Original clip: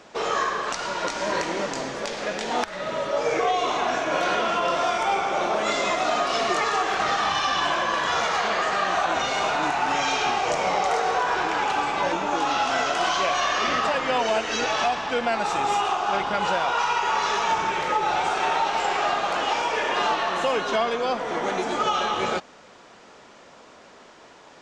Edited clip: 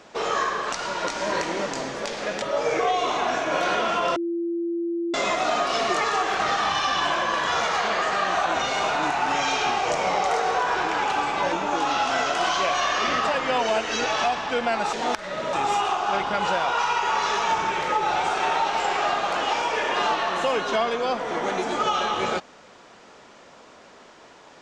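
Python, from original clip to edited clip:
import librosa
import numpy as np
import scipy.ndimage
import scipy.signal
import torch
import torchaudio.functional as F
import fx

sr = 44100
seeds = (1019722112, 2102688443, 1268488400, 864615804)

y = fx.edit(x, sr, fx.move(start_s=2.42, length_s=0.6, to_s=15.53),
    fx.bleep(start_s=4.76, length_s=0.98, hz=340.0, db=-23.5), tone=tone)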